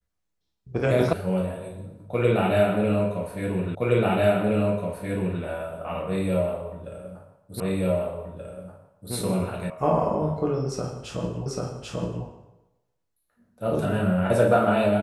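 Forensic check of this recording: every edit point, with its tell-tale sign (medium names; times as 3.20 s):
1.13 s: sound stops dead
3.75 s: repeat of the last 1.67 s
7.60 s: repeat of the last 1.53 s
9.70 s: sound stops dead
11.46 s: repeat of the last 0.79 s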